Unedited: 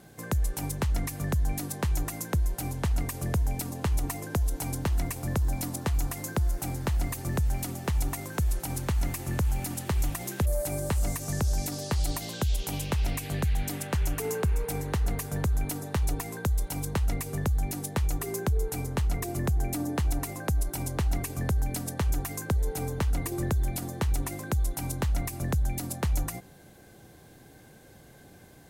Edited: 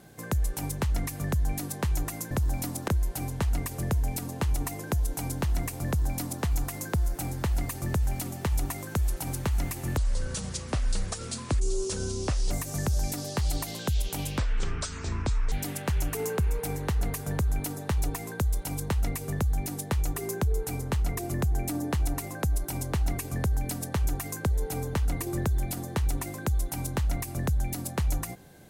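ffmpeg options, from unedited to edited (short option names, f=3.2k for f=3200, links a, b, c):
-filter_complex "[0:a]asplit=7[a][b][c][d][e][f][g];[a]atrim=end=2.312[h];[b]atrim=start=5.298:end=5.872[i];[c]atrim=start=2.308:end=9.404[j];[d]atrim=start=9.4:end=11.05,asetpts=PTS-STARTPTS,asetrate=28665,aresample=44100,atrim=end_sample=111946,asetpts=PTS-STARTPTS[k];[e]atrim=start=11.046:end=12.924[l];[f]atrim=start=12.92:end=13.57,asetpts=PTS-STARTPTS,asetrate=25137,aresample=44100,atrim=end_sample=50289,asetpts=PTS-STARTPTS[m];[g]atrim=start=13.566[n];[h][i]acrossfade=d=0.004:c1=hsin:c2=hsin[o];[o][j]acrossfade=d=0.004:c1=hsin:c2=hsin[p];[p][k]acrossfade=d=0.004:c1=hsin:c2=hsin[q];[q][l]acrossfade=d=0.004:c1=hsin:c2=hsin[r];[r][m]acrossfade=d=0.004:c1=hsin:c2=hsin[s];[s][n]acrossfade=d=0.004:c1=hsin:c2=hsin"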